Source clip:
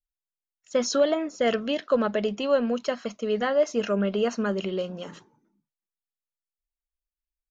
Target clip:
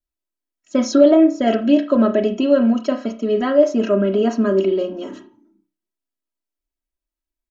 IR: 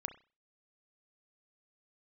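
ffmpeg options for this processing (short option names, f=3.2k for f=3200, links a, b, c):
-filter_complex "[0:a]equalizer=f=260:t=o:w=2.3:g=12.5,aecho=1:1:3.1:0.95[a];[1:a]atrim=start_sample=2205[b];[a][b]afir=irnorm=-1:irlink=0"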